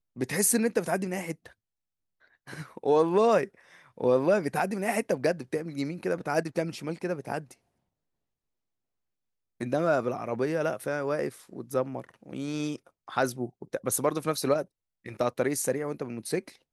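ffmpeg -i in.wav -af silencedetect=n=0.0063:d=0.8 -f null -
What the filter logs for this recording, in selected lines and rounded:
silence_start: 1.50
silence_end: 2.47 | silence_duration: 0.97
silence_start: 7.53
silence_end: 9.61 | silence_duration: 2.07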